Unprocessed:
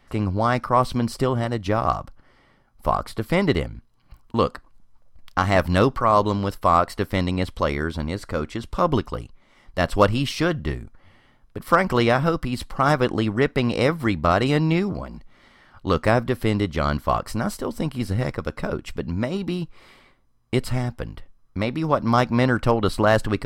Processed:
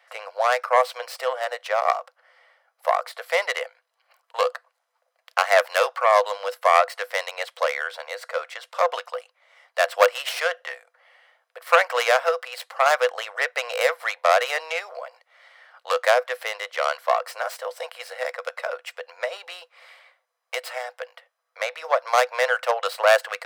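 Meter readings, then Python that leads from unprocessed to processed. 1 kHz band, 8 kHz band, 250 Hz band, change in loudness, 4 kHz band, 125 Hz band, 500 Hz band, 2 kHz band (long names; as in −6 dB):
+0.5 dB, +4.0 dB, below −40 dB, −1.0 dB, +2.0 dB, below −40 dB, 0.0 dB, +4.0 dB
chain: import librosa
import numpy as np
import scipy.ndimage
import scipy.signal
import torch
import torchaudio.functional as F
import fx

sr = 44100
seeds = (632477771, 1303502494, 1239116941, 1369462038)

y = fx.tracing_dist(x, sr, depth_ms=0.2)
y = scipy.signal.sosfilt(scipy.signal.cheby1(6, 6, 480.0, 'highpass', fs=sr, output='sos'), y)
y = y * librosa.db_to_amplitude(4.5)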